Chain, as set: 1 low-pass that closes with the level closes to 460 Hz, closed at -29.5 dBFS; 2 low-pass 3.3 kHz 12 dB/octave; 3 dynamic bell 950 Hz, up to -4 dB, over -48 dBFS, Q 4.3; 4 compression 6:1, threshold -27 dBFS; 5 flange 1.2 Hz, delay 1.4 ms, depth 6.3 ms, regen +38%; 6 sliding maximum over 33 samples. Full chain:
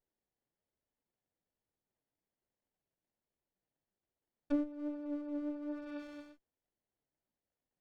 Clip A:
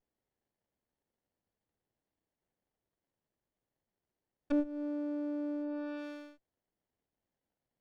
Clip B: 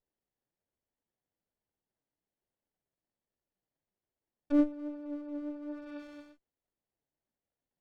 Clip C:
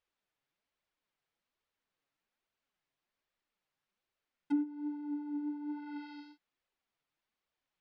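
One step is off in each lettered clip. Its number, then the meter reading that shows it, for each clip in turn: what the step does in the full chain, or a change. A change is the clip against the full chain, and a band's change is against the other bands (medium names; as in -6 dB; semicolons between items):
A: 5, loudness change +3.0 LU; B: 4, crest factor change +2.5 dB; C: 6, distortion -7 dB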